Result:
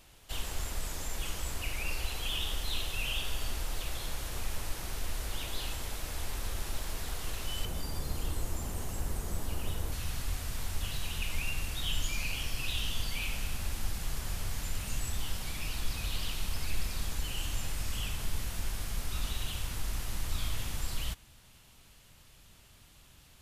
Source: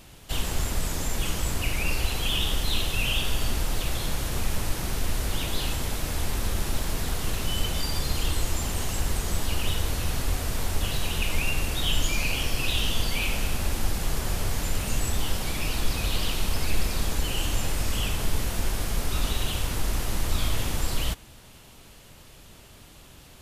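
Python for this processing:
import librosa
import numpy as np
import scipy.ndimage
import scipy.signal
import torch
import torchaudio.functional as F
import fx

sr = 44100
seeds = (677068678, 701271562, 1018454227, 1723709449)

y = fx.peak_eq(x, sr, hz=fx.steps((0.0, 180.0), (7.65, 3400.0), (9.92, 410.0)), db=-7.0, octaves=2.2)
y = y * librosa.db_to_amplitude(-7.5)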